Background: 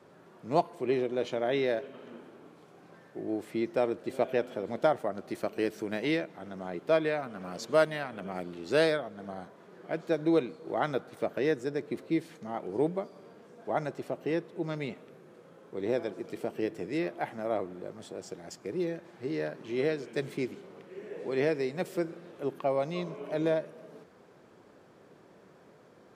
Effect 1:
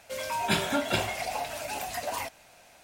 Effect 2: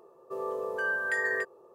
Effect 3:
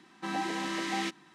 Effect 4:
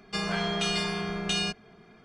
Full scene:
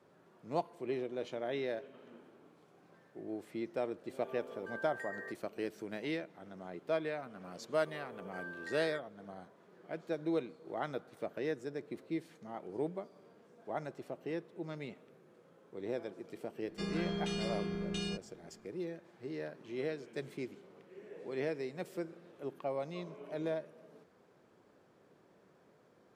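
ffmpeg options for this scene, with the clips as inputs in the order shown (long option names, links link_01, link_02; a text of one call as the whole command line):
ffmpeg -i bed.wav -i cue0.wav -i cue1.wav -i cue2.wav -i cue3.wav -filter_complex "[2:a]asplit=2[link_01][link_02];[0:a]volume=-8.5dB[link_03];[4:a]lowshelf=frequency=520:width_type=q:width=1.5:gain=8[link_04];[link_01]atrim=end=1.74,asetpts=PTS-STARTPTS,volume=-16dB,afade=type=in:duration=0.004:curve=hsin,afade=type=out:start_time=1.736:duration=0.004:curve=hsin,adelay=3880[link_05];[link_02]atrim=end=1.74,asetpts=PTS-STARTPTS,volume=-16.5dB,afade=type=in:duration=0.004:curve=hsin,afade=type=out:start_time=1.736:duration=0.004:curve=hsin,adelay=7550[link_06];[link_04]atrim=end=2.04,asetpts=PTS-STARTPTS,volume=-13.5dB,afade=type=in:duration=0.004:curve=hsin,afade=type=out:start_time=2.036:duration=0.004:curve=hsin,adelay=16650[link_07];[link_03][link_05][link_06][link_07]amix=inputs=4:normalize=0" out.wav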